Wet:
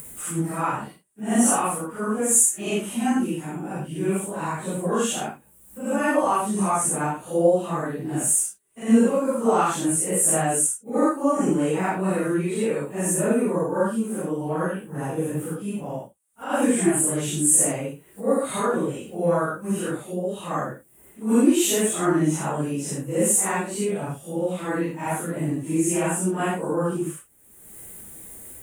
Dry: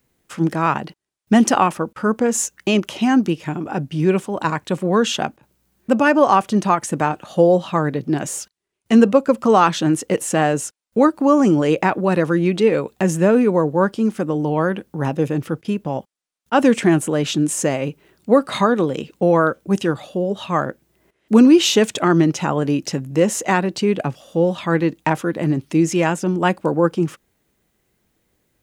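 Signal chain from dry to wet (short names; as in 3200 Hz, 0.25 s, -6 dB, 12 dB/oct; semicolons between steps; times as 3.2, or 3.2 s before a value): phase scrambler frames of 0.2 s; upward compressor, threshold -23 dBFS; resonant high shelf 6800 Hz +11.5 dB, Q 3; gain -6.5 dB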